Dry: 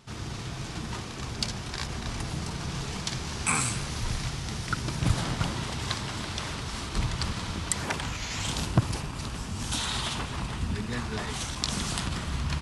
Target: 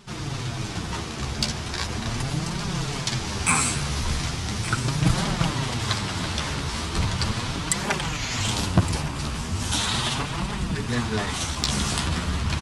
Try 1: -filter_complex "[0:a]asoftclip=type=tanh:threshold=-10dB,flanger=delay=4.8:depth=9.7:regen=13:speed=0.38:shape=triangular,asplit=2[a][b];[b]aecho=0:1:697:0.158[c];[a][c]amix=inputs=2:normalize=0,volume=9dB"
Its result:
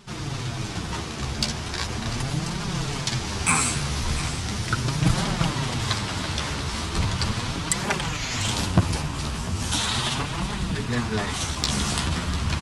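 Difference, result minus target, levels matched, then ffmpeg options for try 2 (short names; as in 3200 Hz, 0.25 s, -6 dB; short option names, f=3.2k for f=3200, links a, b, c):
echo 0.469 s early
-filter_complex "[0:a]asoftclip=type=tanh:threshold=-10dB,flanger=delay=4.8:depth=9.7:regen=13:speed=0.38:shape=triangular,asplit=2[a][b];[b]aecho=0:1:1166:0.158[c];[a][c]amix=inputs=2:normalize=0,volume=9dB"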